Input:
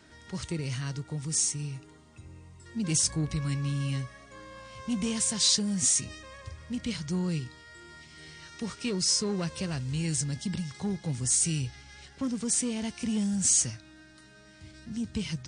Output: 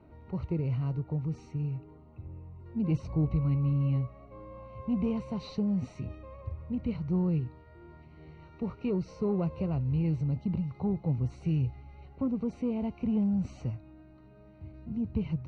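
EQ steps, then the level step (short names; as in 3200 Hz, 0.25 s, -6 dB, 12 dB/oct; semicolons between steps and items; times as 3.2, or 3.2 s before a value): running mean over 26 samples; air absorption 300 m; bell 240 Hz -5 dB 1.8 oct; +6.5 dB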